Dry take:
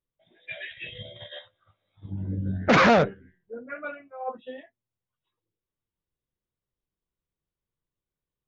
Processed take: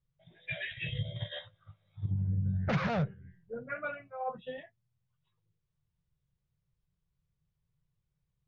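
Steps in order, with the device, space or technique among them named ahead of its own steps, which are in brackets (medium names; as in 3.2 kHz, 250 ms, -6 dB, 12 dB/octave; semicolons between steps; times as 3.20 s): jukebox (low-pass 5.7 kHz; resonant low shelf 200 Hz +9.5 dB, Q 3; compression 4:1, threshold -31 dBFS, peak gain reduction 19 dB)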